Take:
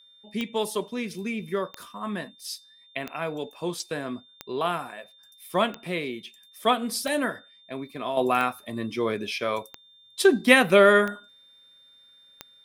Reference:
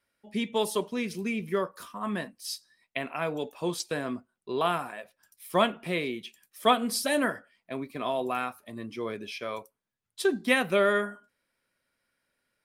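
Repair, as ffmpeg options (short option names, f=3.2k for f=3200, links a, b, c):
-af "adeclick=t=4,bandreject=f=3.6k:w=30,asetnsamples=n=441:p=0,asendcmd='8.17 volume volume -7.5dB',volume=0dB"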